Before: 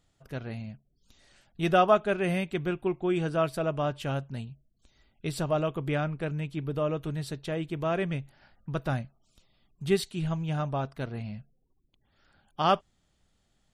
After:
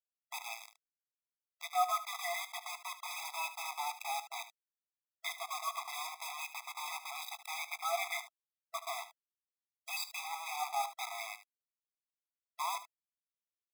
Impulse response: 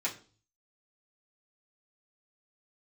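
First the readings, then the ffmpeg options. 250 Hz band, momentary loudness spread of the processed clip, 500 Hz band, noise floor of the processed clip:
under -40 dB, 10 LU, -19.0 dB, under -85 dBFS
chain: -filter_complex "[0:a]afftfilt=real='re*pow(10,22/40*sin(2*PI*(1.3*log(max(b,1)*sr/1024/100)/log(2)-(-0.31)*(pts-256)/sr)))':imag='im*pow(10,22/40*sin(2*PI*(1.3*log(max(b,1)*sr/1024/100)/log(2)-(-0.31)*(pts-256)/sr)))':win_size=1024:overlap=0.75,highpass=f=110:p=1,agate=range=-33dB:threshold=-49dB:ratio=3:detection=peak,acrossover=split=150 5100:gain=0.141 1 0.2[a][b][c];[a][b][c]amix=inputs=3:normalize=0,areverse,acompressor=threshold=-29dB:ratio=8,areverse,acrusher=bits=5:mix=0:aa=0.000001,asplit=2[d][e];[e]aecho=0:1:19|74:0.158|0.224[f];[d][f]amix=inputs=2:normalize=0,afftfilt=real='re*eq(mod(floor(b*sr/1024/660),2),1)':imag='im*eq(mod(floor(b*sr/1024/660),2),1)':win_size=1024:overlap=0.75,volume=1dB"

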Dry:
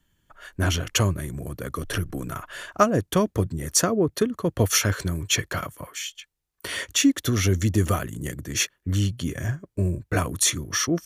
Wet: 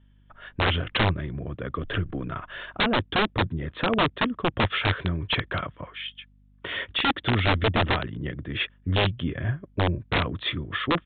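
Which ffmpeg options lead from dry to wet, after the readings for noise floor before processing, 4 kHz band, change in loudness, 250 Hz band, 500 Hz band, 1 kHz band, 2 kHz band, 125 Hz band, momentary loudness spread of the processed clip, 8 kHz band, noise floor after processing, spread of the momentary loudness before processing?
-75 dBFS, +1.0 dB, -2.0 dB, -3.5 dB, -2.5 dB, +3.0 dB, +3.5 dB, -2.5 dB, 11 LU, under -40 dB, -58 dBFS, 13 LU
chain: -af "aeval=exprs='val(0)+0.00158*(sin(2*PI*50*n/s)+sin(2*PI*2*50*n/s)/2+sin(2*PI*3*50*n/s)/3+sin(2*PI*4*50*n/s)/4+sin(2*PI*5*50*n/s)/5)':c=same,aresample=8000,aeval=exprs='(mod(6.31*val(0)+1,2)-1)/6.31':c=same,aresample=44100"

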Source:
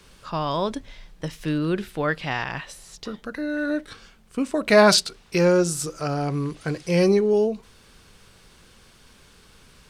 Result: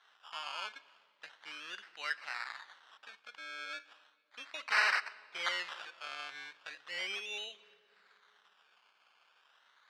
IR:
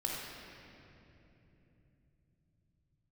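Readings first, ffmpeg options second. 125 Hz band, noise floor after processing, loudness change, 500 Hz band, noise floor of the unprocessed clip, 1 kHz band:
under -40 dB, -71 dBFS, -15.0 dB, -31.5 dB, -54 dBFS, -13.5 dB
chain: -filter_complex "[0:a]agate=range=-33dB:threshold=-45dB:ratio=3:detection=peak,acrusher=samples=18:mix=1:aa=0.000001:lfo=1:lforange=10.8:lforate=0.36,aeval=exprs='(mod(2.99*val(0)+1,2)-1)/2.99':c=same,acompressor=mode=upward:threshold=-37dB:ratio=2.5,asuperpass=centerf=2400:order=4:qfactor=0.79,asplit=2[a][b];[1:a]atrim=start_sample=2205,asetrate=74970,aresample=44100[c];[b][c]afir=irnorm=-1:irlink=0,volume=-14.5dB[d];[a][d]amix=inputs=2:normalize=0,volume=-9dB"

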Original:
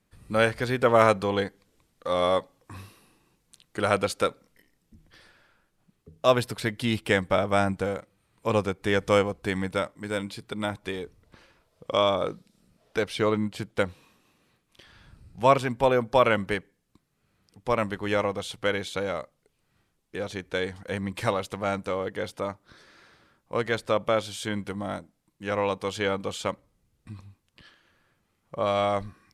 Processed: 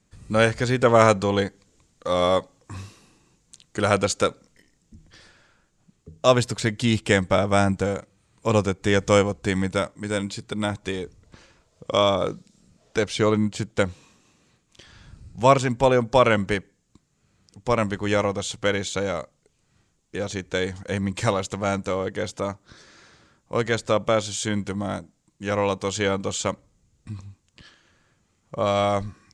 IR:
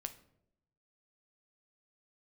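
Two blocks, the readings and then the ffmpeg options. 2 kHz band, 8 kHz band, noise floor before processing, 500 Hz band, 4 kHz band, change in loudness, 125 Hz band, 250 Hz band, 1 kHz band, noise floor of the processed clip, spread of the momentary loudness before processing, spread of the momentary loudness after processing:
+2.5 dB, +10.0 dB, -73 dBFS, +3.0 dB, +4.0 dB, +3.5 dB, +6.5 dB, +5.0 dB, +2.5 dB, -68 dBFS, 14 LU, 14 LU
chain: -af "lowpass=f=7.1k:t=q:w=3.8,equalizer=f=85:w=0.31:g=5,volume=2dB"

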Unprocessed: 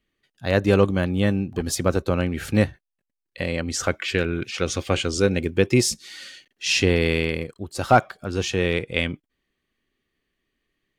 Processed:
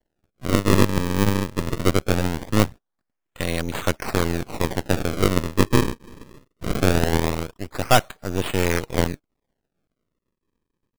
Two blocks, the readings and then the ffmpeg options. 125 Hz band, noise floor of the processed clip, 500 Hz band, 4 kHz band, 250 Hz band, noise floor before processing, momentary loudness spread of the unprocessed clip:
+1.5 dB, -81 dBFS, -1.5 dB, -2.0 dB, +1.0 dB, -83 dBFS, 11 LU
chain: -af "acrusher=samples=35:mix=1:aa=0.000001:lfo=1:lforange=56:lforate=0.21,aeval=exprs='max(val(0),0)':c=same,volume=3dB"

